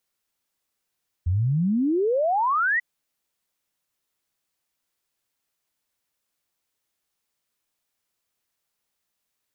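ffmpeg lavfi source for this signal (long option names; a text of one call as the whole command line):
ffmpeg -f lavfi -i "aevalsrc='0.112*clip(min(t,1.54-t)/0.01,0,1)*sin(2*PI*82*1.54/log(2000/82)*(exp(log(2000/82)*t/1.54)-1))':duration=1.54:sample_rate=44100" out.wav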